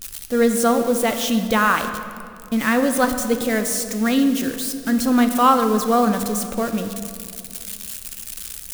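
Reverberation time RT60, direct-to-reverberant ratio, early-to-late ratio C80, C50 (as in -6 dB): 2.4 s, 7.0 dB, 9.5 dB, 8.5 dB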